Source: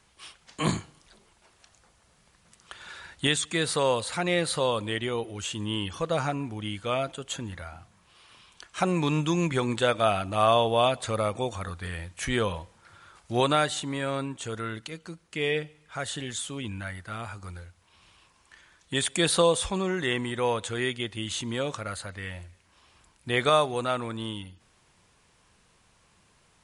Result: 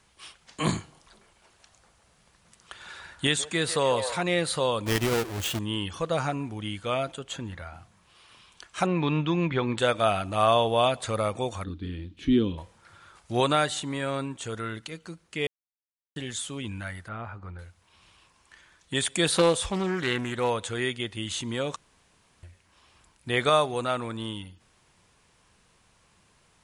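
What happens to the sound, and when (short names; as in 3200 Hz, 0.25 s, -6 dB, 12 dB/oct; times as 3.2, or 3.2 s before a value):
0.78–4.23 delay with a stepping band-pass 0.144 s, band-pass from 670 Hz, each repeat 0.7 oct, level -6.5 dB
4.86–5.59 half-waves squared off
7.19–7.74 high shelf 7900 Hz -11 dB
8.86–9.78 LPF 3900 Hz 24 dB/oct
11.64–12.58 EQ curve 160 Hz 0 dB, 290 Hz +15 dB, 610 Hz -17 dB, 1200 Hz -15 dB, 1900 Hz -14 dB, 3500 Hz -2 dB, 8100 Hz -26 dB
15.47–16.16 mute
17.08–17.59 LPF 1800 Hz
19.27–20.5 Doppler distortion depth 0.32 ms
21.76–22.43 room tone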